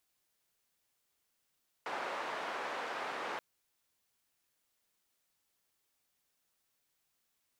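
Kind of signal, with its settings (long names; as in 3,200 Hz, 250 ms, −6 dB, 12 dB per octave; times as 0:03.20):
band-limited noise 480–1,300 Hz, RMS −39.5 dBFS 1.53 s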